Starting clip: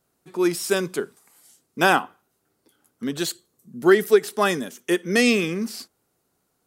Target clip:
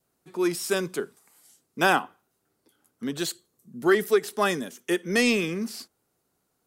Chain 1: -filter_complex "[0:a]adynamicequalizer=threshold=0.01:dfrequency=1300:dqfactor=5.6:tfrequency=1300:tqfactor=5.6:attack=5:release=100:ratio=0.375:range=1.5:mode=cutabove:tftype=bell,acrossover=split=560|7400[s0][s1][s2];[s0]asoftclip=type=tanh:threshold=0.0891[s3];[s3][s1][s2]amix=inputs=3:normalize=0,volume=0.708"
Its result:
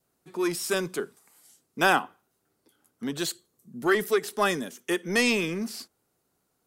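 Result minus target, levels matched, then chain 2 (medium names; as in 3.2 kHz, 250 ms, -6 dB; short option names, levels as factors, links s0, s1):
saturation: distortion +7 dB
-filter_complex "[0:a]adynamicequalizer=threshold=0.01:dfrequency=1300:dqfactor=5.6:tfrequency=1300:tqfactor=5.6:attack=5:release=100:ratio=0.375:range=1.5:mode=cutabove:tftype=bell,acrossover=split=560|7400[s0][s1][s2];[s0]asoftclip=type=tanh:threshold=0.211[s3];[s3][s1][s2]amix=inputs=3:normalize=0,volume=0.708"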